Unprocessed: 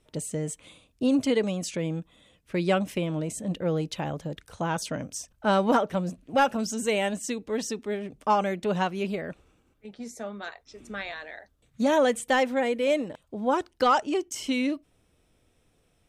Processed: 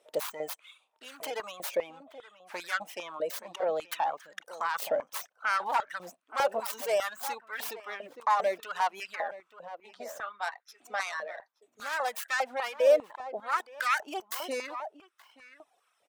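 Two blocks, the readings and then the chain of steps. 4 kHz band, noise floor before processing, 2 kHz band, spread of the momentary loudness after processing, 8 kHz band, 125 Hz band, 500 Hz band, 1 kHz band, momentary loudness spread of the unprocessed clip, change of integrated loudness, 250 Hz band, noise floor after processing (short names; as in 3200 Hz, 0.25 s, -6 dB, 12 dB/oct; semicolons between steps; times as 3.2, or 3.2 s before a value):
-5.0 dB, -68 dBFS, -0.5 dB, 16 LU, -6.5 dB, under -25 dB, -4.0 dB, -3.0 dB, 14 LU, -4.5 dB, -23.0 dB, -75 dBFS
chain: tracing distortion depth 0.35 ms; limiter -23.5 dBFS, peak gain reduction 10.5 dB; reverb removal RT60 1.3 s; outdoor echo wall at 150 m, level -12 dB; stepped high-pass 5 Hz 570–1500 Hz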